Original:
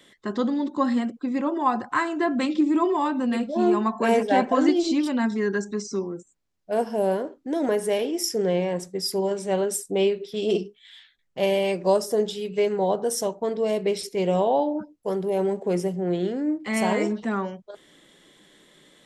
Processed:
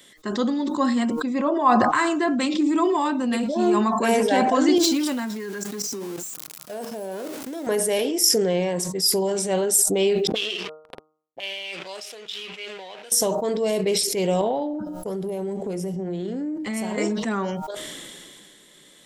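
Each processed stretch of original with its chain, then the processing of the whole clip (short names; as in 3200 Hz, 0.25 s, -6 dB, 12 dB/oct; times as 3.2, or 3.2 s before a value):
1.34–1.94 air absorption 82 m + small resonant body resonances 630/1100 Hz, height 10 dB, ringing for 40 ms
4.78–7.67 zero-crossing step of -34 dBFS + HPF 170 Hz + level quantiser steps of 16 dB
10.27–13.12 backlash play -33 dBFS + auto-wah 210–2900 Hz, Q 2, up, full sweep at -29 dBFS
14.41–16.98 low shelf 370 Hz +10 dB + de-hum 182.1 Hz, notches 36 + compressor, threshold -26 dBFS
whole clip: high shelf 4500 Hz +11.5 dB; de-hum 155 Hz, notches 9; sustainer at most 23 dB/s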